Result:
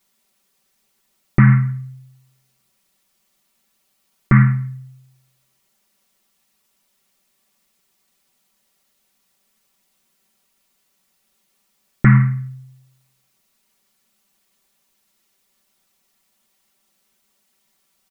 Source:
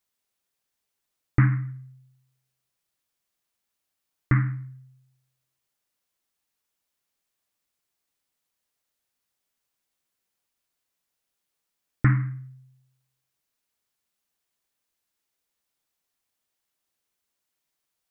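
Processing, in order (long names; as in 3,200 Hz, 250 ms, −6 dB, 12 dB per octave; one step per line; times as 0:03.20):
parametric band 220 Hz +7.5 dB 0.35 octaves
notch filter 1,600 Hz, Q 14
comb filter 5.2 ms, depth 89%
boost into a limiter +13 dB
level −1 dB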